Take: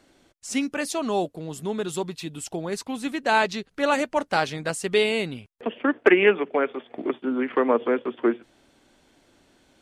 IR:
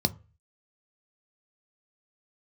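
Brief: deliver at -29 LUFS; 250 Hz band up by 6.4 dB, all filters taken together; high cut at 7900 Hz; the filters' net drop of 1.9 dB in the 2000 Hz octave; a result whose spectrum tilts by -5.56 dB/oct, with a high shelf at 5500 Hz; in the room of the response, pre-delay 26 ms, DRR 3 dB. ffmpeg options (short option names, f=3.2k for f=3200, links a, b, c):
-filter_complex "[0:a]lowpass=7.9k,equalizer=f=250:t=o:g=8,equalizer=f=2k:t=o:g=-3.5,highshelf=f=5.5k:g=7,asplit=2[a][b];[1:a]atrim=start_sample=2205,adelay=26[c];[b][c]afir=irnorm=-1:irlink=0,volume=-11.5dB[d];[a][d]amix=inputs=2:normalize=0,volume=-11.5dB"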